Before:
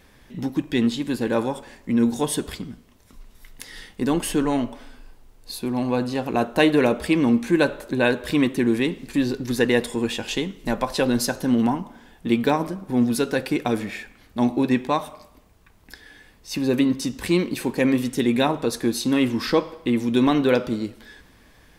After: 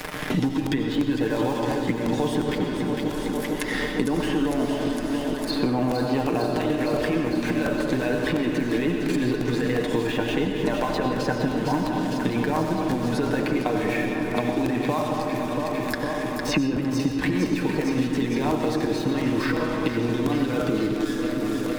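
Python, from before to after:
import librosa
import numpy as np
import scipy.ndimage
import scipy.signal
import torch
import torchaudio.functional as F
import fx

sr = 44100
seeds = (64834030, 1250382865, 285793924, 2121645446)

p1 = fx.peak_eq(x, sr, hz=120.0, db=-3.0, octaves=1.4)
p2 = fx.over_compress(p1, sr, threshold_db=-25.0, ratio=-1.0)
p3 = fx.env_lowpass_down(p2, sr, base_hz=1900.0, full_db=-23.5)
p4 = np.sign(p3) * np.maximum(np.abs(p3) - 10.0 ** (-47.0 / 20.0), 0.0)
p5 = fx.high_shelf(p4, sr, hz=4900.0, db=10.5)
p6 = p5 + 0.55 * np.pad(p5, (int(6.6 * sr / 1000.0), 0))[:len(p5)]
p7 = p6 + fx.echo_alternate(p6, sr, ms=228, hz=1200.0, feedback_pct=81, wet_db=-8.0, dry=0)
p8 = fx.rev_freeverb(p7, sr, rt60_s=1.5, hf_ratio=0.45, predelay_ms=50, drr_db=4.0)
p9 = fx.buffer_crackle(p8, sr, first_s=0.31, period_s=0.35, block=128, kind='repeat')
y = fx.band_squash(p9, sr, depth_pct=100)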